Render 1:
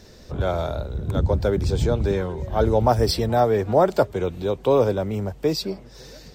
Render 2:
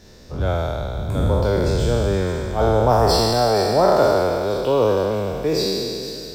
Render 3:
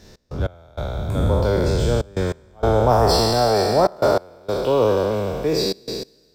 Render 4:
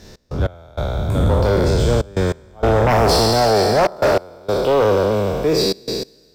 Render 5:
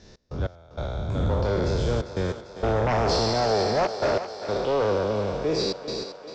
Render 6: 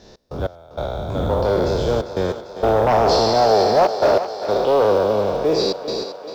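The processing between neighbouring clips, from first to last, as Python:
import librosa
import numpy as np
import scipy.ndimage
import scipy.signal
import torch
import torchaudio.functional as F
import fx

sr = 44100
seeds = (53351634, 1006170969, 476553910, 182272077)

y1 = fx.spec_trails(x, sr, decay_s=2.53)
y1 = fx.echo_wet_highpass(y1, sr, ms=470, feedback_pct=53, hz=4000.0, wet_db=-9)
y1 = y1 * librosa.db_to_amplitude(-2.0)
y2 = fx.step_gate(y1, sr, bpm=97, pattern='x.x..xxxxxxx', floor_db=-24.0, edge_ms=4.5)
y3 = fx.fold_sine(y2, sr, drive_db=7, ceiling_db=-4.0)
y3 = y3 * librosa.db_to_amplitude(-6.0)
y4 = scipy.signal.sosfilt(scipy.signal.butter(8, 7000.0, 'lowpass', fs=sr, output='sos'), y3)
y4 = fx.echo_thinned(y4, sr, ms=396, feedback_pct=65, hz=260.0, wet_db=-11.0)
y4 = y4 * librosa.db_to_amplitude(-8.5)
y5 = fx.curve_eq(y4, sr, hz=(110.0, 740.0, 2100.0, 3700.0, 8400.0), db=(0, 10, 1, 6, 1))
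y5 = fx.quant_companded(y5, sr, bits=8)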